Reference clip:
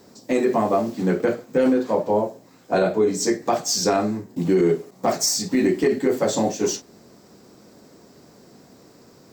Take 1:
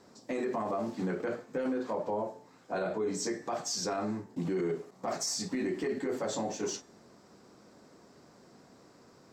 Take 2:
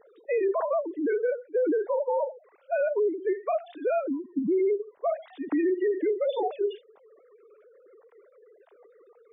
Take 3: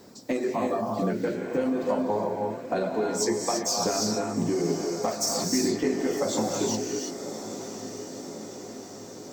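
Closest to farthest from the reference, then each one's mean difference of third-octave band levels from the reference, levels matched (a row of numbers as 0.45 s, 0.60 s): 1, 3, 2; 4.0 dB, 9.0 dB, 16.0 dB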